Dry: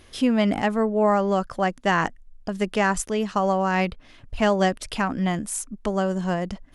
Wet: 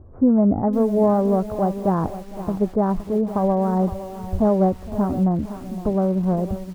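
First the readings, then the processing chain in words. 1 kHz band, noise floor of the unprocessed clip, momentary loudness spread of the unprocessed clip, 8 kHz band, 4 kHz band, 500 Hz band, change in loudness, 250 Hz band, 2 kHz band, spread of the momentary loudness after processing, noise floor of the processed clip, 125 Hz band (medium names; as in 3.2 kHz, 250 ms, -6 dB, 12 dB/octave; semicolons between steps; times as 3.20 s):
-1.5 dB, -51 dBFS, 8 LU, under -15 dB, under -15 dB, +2.5 dB, +2.5 dB, +5.0 dB, under -15 dB, 9 LU, -38 dBFS, +6.0 dB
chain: bit-reversed sample order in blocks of 16 samples; Bessel low-pass 710 Hz, order 8; peaking EQ 86 Hz +13 dB 0.65 oct; delay 460 ms -19 dB; bit-crushed delay 515 ms, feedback 35%, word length 7-bit, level -12.5 dB; trim +4.5 dB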